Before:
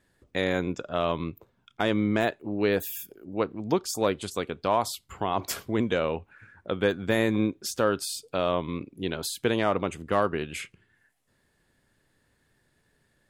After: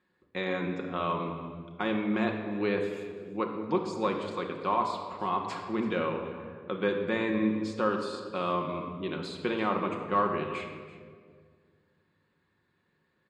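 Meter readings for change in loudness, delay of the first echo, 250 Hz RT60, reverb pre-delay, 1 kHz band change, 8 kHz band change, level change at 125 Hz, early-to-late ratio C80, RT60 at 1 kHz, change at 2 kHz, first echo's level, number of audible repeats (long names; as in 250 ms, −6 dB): −3.0 dB, 334 ms, 2.3 s, 5 ms, 0.0 dB, below −15 dB, −5.0 dB, 6.5 dB, 1.6 s, −3.5 dB, −17.5 dB, 1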